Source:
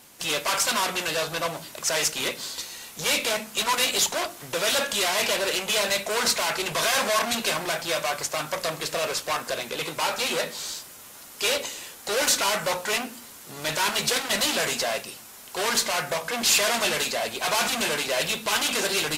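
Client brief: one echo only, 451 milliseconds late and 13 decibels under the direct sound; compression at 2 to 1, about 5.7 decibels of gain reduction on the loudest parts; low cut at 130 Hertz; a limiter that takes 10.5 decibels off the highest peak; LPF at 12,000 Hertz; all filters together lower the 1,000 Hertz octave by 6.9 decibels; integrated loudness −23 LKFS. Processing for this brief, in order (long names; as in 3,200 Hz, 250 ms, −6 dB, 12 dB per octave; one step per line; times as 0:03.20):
high-pass filter 130 Hz
low-pass filter 12,000 Hz
parametric band 1,000 Hz −9 dB
downward compressor 2 to 1, threshold −28 dBFS
brickwall limiter −25 dBFS
single-tap delay 451 ms −13 dB
level +11.5 dB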